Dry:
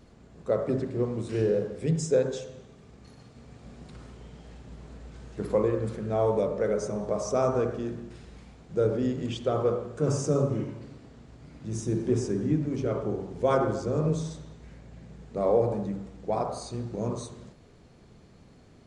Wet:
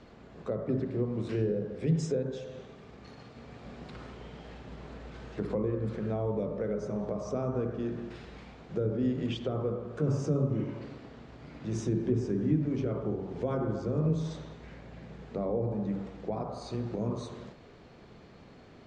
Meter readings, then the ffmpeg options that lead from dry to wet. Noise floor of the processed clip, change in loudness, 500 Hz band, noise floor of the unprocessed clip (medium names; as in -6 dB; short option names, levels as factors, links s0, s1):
-53 dBFS, -4.0 dB, -6.5 dB, -54 dBFS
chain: -filter_complex "[0:a]lowpass=3900,lowshelf=f=230:g=-9,acrossover=split=280[s0][s1];[s1]acompressor=threshold=0.00708:ratio=5[s2];[s0][s2]amix=inputs=2:normalize=0,volume=2"